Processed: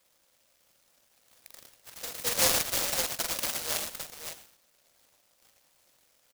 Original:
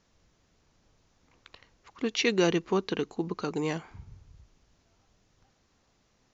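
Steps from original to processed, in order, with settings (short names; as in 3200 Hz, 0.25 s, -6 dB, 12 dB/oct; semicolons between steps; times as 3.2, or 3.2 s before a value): 2.32–3.34 minimum comb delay 7.3 ms; in parallel at -9 dB: overloaded stage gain 32 dB; on the sum: brick-wall FIR band-pass 490–2000 Hz; tapped delay 44/109/114/335/561 ms -4/-5.5/-11/-17/-6.5 dB; noise-modulated delay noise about 5200 Hz, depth 0.38 ms; gain +3.5 dB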